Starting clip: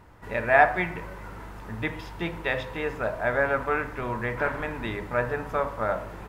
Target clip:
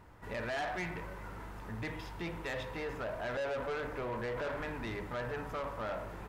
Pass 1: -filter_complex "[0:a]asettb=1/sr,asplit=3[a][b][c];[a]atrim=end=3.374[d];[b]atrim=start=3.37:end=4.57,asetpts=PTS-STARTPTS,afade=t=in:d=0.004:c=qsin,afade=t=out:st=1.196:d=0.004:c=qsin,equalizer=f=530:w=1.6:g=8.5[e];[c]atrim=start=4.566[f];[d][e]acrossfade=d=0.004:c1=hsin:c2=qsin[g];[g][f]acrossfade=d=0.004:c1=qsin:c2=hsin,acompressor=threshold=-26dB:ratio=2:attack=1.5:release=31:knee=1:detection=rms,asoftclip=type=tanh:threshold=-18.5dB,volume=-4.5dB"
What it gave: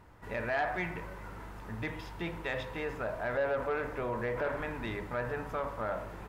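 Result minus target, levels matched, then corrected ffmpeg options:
soft clip: distortion -11 dB
-filter_complex "[0:a]asettb=1/sr,asplit=3[a][b][c];[a]atrim=end=3.374[d];[b]atrim=start=3.37:end=4.57,asetpts=PTS-STARTPTS,afade=t=in:d=0.004:c=qsin,afade=t=out:st=1.196:d=0.004:c=qsin,equalizer=f=530:w=1.6:g=8.5[e];[c]atrim=start=4.566[f];[d][e]acrossfade=d=0.004:c1=hsin:c2=qsin[g];[g][f]acrossfade=d=0.004:c1=qsin:c2=hsin,acompressor=threshold=-26dB:ratio=2:attack=1.5:release=31:knee=1:detection=rms,asoftclip=type=tanh:threshold=-28.5dB,volume=-4.5dB"

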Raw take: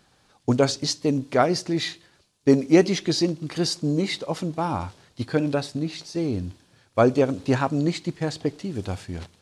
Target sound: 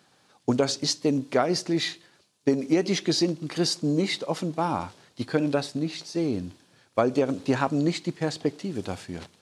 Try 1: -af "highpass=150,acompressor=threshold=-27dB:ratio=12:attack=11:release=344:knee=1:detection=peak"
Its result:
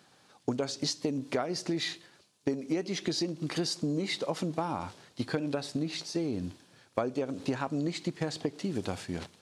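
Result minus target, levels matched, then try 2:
compressor: peak gain reduction +9 dB
-af "highpass=150,acompressor=threshold=-17dB:ratio=12:attack=11:release=344:knee=1:detection=peak"

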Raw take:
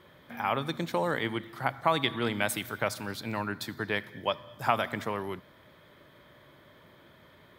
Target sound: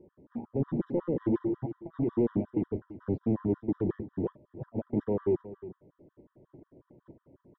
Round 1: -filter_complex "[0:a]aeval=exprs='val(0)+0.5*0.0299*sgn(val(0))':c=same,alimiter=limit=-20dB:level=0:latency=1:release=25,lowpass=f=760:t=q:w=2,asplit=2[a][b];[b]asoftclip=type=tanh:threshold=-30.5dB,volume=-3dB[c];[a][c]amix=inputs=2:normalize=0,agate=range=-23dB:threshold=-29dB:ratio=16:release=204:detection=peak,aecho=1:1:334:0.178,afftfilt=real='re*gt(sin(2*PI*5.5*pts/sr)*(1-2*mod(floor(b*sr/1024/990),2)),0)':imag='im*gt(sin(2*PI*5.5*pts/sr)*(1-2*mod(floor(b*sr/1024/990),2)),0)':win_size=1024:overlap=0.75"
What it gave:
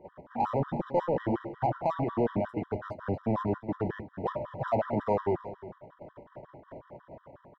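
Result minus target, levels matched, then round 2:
1000 Hz band +16.0 dB
-filter_complex "[0:a]aeval=exprs='val(0)+0.5*0.0299*sgn(val(0))':c=same,alimiter=limit=-20dB:level=0:latency=1:release=25,lowpass=f=360:t=q:w=2,asplit=2[a][b];[b]asoftclip=type=tanh:threshold=-30.5dB,volume=-3dB[c];[a][c]amix=inputs=2:normalize=0,agate=range=-23dB:threshold=-29dB:ratio=16:release=204:detection=peak,aecho=1:1:334:0.178,afftfilt=real='re*gt(sin(2*PI*5.5*pts/sr)*(1-2*mod(floor(b*sr/1024/990),2)),0)':imag='im*gt(sin(2*PI*5.5*pts/sr)*(1-2*mod(floor(b*sr/1024/990),2)),0)':win_size=1024:overlap=0.75"

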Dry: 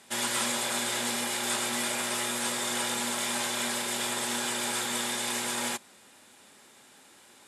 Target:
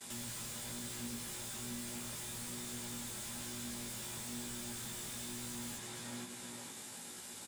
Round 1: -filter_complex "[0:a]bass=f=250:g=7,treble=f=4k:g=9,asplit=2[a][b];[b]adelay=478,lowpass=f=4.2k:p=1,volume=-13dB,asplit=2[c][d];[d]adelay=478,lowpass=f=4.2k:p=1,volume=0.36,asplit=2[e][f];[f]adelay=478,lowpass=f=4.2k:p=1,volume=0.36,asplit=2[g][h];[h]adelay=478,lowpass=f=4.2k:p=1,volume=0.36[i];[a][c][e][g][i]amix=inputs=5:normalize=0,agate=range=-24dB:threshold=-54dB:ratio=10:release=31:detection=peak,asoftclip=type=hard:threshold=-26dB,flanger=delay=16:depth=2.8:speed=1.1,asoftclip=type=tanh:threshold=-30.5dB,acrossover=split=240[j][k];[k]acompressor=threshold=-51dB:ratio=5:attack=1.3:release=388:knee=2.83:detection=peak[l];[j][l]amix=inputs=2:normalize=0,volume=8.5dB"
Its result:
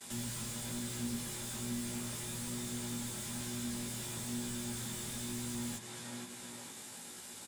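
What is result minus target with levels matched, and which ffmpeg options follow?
hard clip: distortion -5 dB
-filter_complex "[0:a]bass=f=250:g=7,treble=f=4k:g=9,asplit=2[a][b];[b]adelay=478,lowpass=f=4.2k:p=1,volume=-13dB,asplit=2[c][d];[d]adelay=478,lowpass=f=4.2k:p=1,volume=0.36,asplit=2[e][f];[f]adelay=478,lowpass=f=4.2k:p=1,volume=0.36,asplit=2[g][h];[h]adelay=478,lowpass=f=4.2k:p=1,volume=0.36[i];[a][c][e][g][i]amix=inputs=5:normalize=0,agate=range=-24dB:threshold=-54dB:ratio=10:release=31:detection=peak,asoftclip=type=hard:threshold=-37.5dB,flanger=delay=16:depth=2.8:speed=1.1,asoftclip=type=tanh:threshold=-30.5dB,acrossover=split=240[j][k];[k]acompressor=threshold=-51dB:ratio=5:attack=1.3:release=388:knee=2.83:detection=peak[l];[j][l]amix=inputs=2:normalize=0,volume=8.5dB"

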